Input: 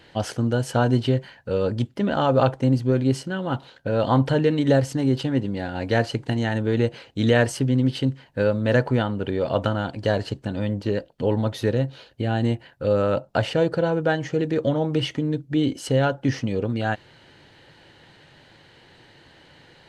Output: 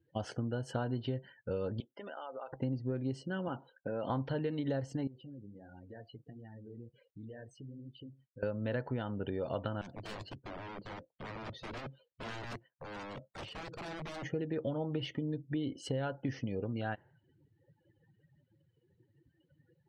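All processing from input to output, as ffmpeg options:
ffmpeg -i in.wav -filter_complex "[0:a]asettb=1/sr,asplit=3[link_01][link_02][link_03];[link_01]atrim=end=1.804[link_04];[link_02]atrim=start=1.8:end=2.53,asetpts=PTS-STARTPTS,afade=type=in:duration=0.004:curve=qsin,afade=type=out:start_time=0.726:duration=0.004:curve=qsin,highpass=620,acompressor=threshold=-34dB:ratio=5:attack=3.2:release=140:knee=1:detection=peak[link_05];[link_03]atrim=start=2.526[link_06];[link_04][link_05]acrossfade=duration=0.004:curve1=hsin:curve2=qsin[link_07];[link_07][link_06]acrossfade=duration=0.004:curve1=qsin:curve2=hsin,asettb=1/sr,asplit=3[link_08][link_09][link_10];[link_08]atrim=end=3.484[link_11];[link_09]atrim=start=3.48:end=4.1,asetpts=PTS-STARTPTS,afade=type=in:duration=0.004:curve=qsin,afade=type=out:start_time=0.616:duration=0.004:curve=qsin,acompressor=threshold=-24dB:ratio=3:attack=3.2:release=140:knee=1:detection=peak,highpass=160,lowpass=3800[link_12];[link_10]atrim=start=4.096[link_13];[link_11][link_12]acrossfade=duration=0.004:curve1=hsin:curve2=qsin[link_14];[link_14][link_13]acrossfade=duration=0.004:curve1=qsin:curve2=hsin,asettb=1/sr,asplit=3[link_15][link_16][link_17];[link_15]atrim=end=5.074[link_18];[link_16]atrim=start=5.07:end=8.43,asetpts=PTS-STARTPTS,afade=type=in:duration=0.004:curve=qsin,afade=type=out:start_time=3.356:duration=0.004:curve=qsin,acompressor=threshold=-40dB:ratio=3:attack=3.2:release=140:knee=1:detection=peak,acrusher=bits=7:mix=0:aa=0.5,flanger=delay=0.8:depth=8.7:regen=-36:speed=1.4:shape=sinusoidal[link_19];[link_17]atrim=start=8.426[link_20];[link_18][link_19]acrossfade=duration=0.004:curve1=hsin:curve2=qsin[link_21];[link_21][link_20]acrossfade=duration=0.004:curve1=qsin:curve2=hsin,asettb=1/sr,asplit=3[link_22][link_23][link_24];[link_22]atrim=end=9.814[link_25];[link_23]atrim=start=9.81:end=14.23,asetpts=PTS-STARTPTS,afade=type=in:duration=0.004:curve=qsin,afade=type=out:start_time=4.416:duration=0.004:curve=qsin,acrossover=split=300|3000[link_26][link_27][link_28];[link_27]acompressor=threshold=-35dB:ratio=6:attack=3.2:release=140:knee=2.83:detection=peak[link_29];[link_26][link_29][link_28]amix=inputs=3:normalize=0,flanger=delay=4.9:depth=1.4:regen=-64:speed=1.9:shape=triangular,aeval=exprs='(mod(31.6*val(0)+1,2)-1)/31.6':channel_layout=same[link_30];[link_24]atrim=start=14.226[link_31];[link_25][link_30]acrossfade=duration=0.004:curve1=hsin:curve2=qsin[link_32];[link_32][link_31]acrossfade=duration=0.004:curve1=qsin:curve2=hsin,afftdn=noise_reduction=34:noise_floor=-42,highshelf=frequency=8100:gain=-11.5,acompressor=threshold=-26dB:ratio=4,volume=-7dB" out.wav

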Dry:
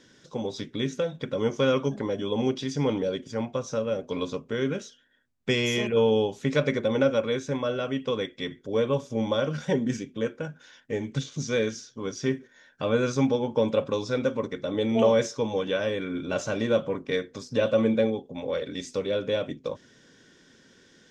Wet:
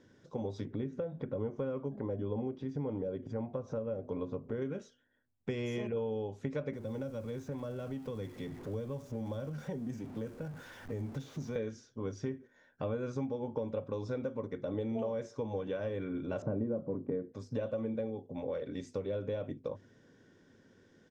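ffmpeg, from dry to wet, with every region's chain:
ffmpeg -i in.wav -filter_complex "[0:a]asettb=1/sr,asplit=3[link_01][link_02][link_03];[link_01]atrim=end=0.654[link_04];[link_02]atrim=start=0.65:end=4.62,asetpts=PTS-STARTPTS,afade=type=in:duration=0.004:curve=qsin,afade=type=out:start_time=3.966:duration=0.004:curve=qsin,lowpass=frequency=1300:poles=1,acompressor=mode=upward:threshold=-31dB:ratio=2.5:attack=3.2:release=140:knee=2.83:detection=peak[link_05];[link_03]atrim=start=4.616[link_06];[link_04][link_05]acrossfade=duration=0.004:curve1=hsin:curve2=qsin[link_07];[link_07][link_06]acrossfade=duration=0.004:curve1=qsin:curve2=hsin,asettb=1/sr,asplit=3[link_08][link_09][link_10];[link_08]atrim=end=6.734[link_11];[link_09]atrim=start=6.73:end=11.56,asetpts=PTS-STARTPTS,afade=type=in:duration=0.004:curve=qsin,afade=type=out:start_time=4.826:duration=0.004:curve=qsin,aeval=exprs='val(0)+0.5*0.0158*sgn(val(0))':channel_layout=same,acrossover=split=200|4700[link_12][link_13][link_14];[link_12]acompressor=threshold=-38dB:ratio=4[link_15];[link_13]acompressor=threshold=-37dB:ratio=4[link_16];[link_14]acompressor=threshold=-47dB:ratio=4[link_17];[link_15][link_16][link_17]amix=inputs=3:normalize=0[link_18];[link_10]atrim=start=11.556[link_19];[link_11][link_18]acrossfade=duration=0.004:curve1=hsin:curve2=qsin[link_20];[link_20][link_19]acrossfade=duration=0.004:curve1=qsin:curve2=hsin,asettb=1/sr,asplit=3[link_21][link_22][link_23];[link_21]atrim=end=16.424[link_24];[link_22]atrim=start=16.42:end=17.32,asetpts=PTS-STARTPTS,afade=type=in:duration=0.004:curve=qsin,afade=type=out:start_time=0.896:duration=0.004:curve=qsin,lowpass=1300,equalizer=frequency=230:width=0.46:gain=12.5[link_25];[link_23]atrim=start=17.316[link_26];[link_24][link_25]acrossfade=duration=0.004:curve1=hsin:curve2=qsin[link_27];[link_27][link_26]acrossfade=duration=0.004:curve1=qsin:curve2=hsin,firequalizer=gain_entry='entry(760,0);entry(1200,-4);entry(3300,-12)':delay=0.05:min_phase=1,acompressor=threshold=-29dB:ratio=6,equalizer=frequency=100:width_type=o:width=0.2:gain=11,volume=-4dB" out.wav

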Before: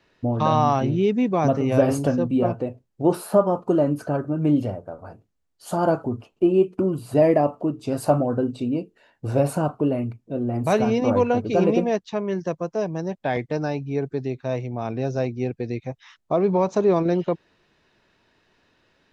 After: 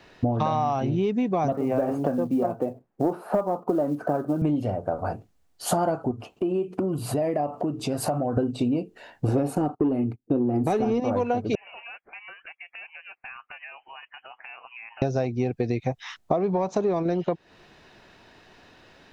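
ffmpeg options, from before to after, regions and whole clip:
ffmpeg -i in.wav -filter_complex "[0:a]asettb=1/sr,asplit=3[link_01][link_02][link_03];[link_01]atrim=end=1.524[link_04];[link_02]atrim=start=1.52:end=4.42,asetpts=PTS-STARTPTS,afade=type=in:duration=0.004:curve=qsin,afade=type=out:start_time=2.896:duration=0.004:curve=qsin,acrossover=split=160 2000:gain=0.178 1 0.0891[link_05][link_06][link_07];[link_05][link_06][link_07]amix=inputs=3:normalize=0,acrusher=bits=9:mode=log:mix=0:aa=0.000001[link_08];[link_03]atrim=start=4.416[link_09];[link_04][link_08]acrossfade=duration=0.004:curve1=hsin:curve2=qsin[link_10];[link_10][link_09]acrossfade=duration=0.004:curve1=qsin:curve2=hsin,asettb=1/sr,asplit=3[link_11][link_12][link_13];[link_11]atrim=end=6.114[link_14];[link_12]atrim=start=6.11:end=8.37,asetpts=PTS-STARTPTS,afade=type=in:duration=0.004:curve=qsin,afade=type=out:start_time=2.256:duration=0.004:curve=qsin,highpass=41,acompressor=threshold=-38dB:ratio=2.5:attack=3.2:release=140:knee=1:detection=peak[link_15];[link_13]atrim=start=8.366[link_16];[link_14][link_15]acrossfade=duration=0.004:curve1=hsin:curve2=qsin[link_17];[link_17][link_16]acrossfade=duration=0.004:curve1=qsin:curve2=hsin,asettb=1/sr,asplit=3[link_18][link_19][link_20];[link_18]atrim=end=9.284[link_21];[link_19]atrim=start=9.28:end=11,asetpts=PTS-STARTPTS,afade=type=in:duration=0.004:curve=qsin,afade=type=out:start_time=1.716:duration=0.004:curve=qsin,equalizer=frequency=270:width=1.2:gain=13,aecho=1:1:2.4:0.39,atrim=end_sample=75852,agate=range=-26dB:threshold=-34dB:ratio=16:release=100:detection=peak[link_22];[link_20]atrim=start=10.996[link_23];[link_21][link_22]acrossfade=duration=0.004:curve1=hsin:curve2=qsin[link_24];[link_24][link_23]acrossfade=duration=0.004:curve1=qsin:curve2=hsin,asettb=1/sr,asplit=3[link_25][link_26][link_27];[link_25]atrim=end=11.554[link_28];[link_26]atrim=start=11.55:end=15.02,asetpts=PTS-STARTPTS,afade=type=in:duration=0.004:curve=qsin,afade=type=out:start_time=3.466:duration=0.004:curve=qsin,highpass=frequency=890:width=0.5412,highpass=frequency=890:width=1.3066,acompressor=threshold=-50dB:ratio=5:attack=3.2:release=140:knee=1:detection=peak,lowpass=frequency=2800:width_type=q:width=0.5098,lowpass=frequency=2800:width_type=q:width=0.6013,lowpass=frequency=2800:width_type=q:width=0.9,lowpass=frequency=2800:width_type=q:width=2.563,afreqshift=-3300[link_29];[link_27]atrim=start=15.016[link_30];[link_28][link_29]acrossfade=duration=0.004:curve1=hsin:curve2=qsin[link_31];[link_31][link_30]acrossfade=duration=0.004:curve1=qsin:curve2=hsin,acontrast=31,equalizer=frequency=740:width_type=o:width=0.26:gain=6,acompressor=threshold=-26dB:ratio=12,volume=5dB" out.wav

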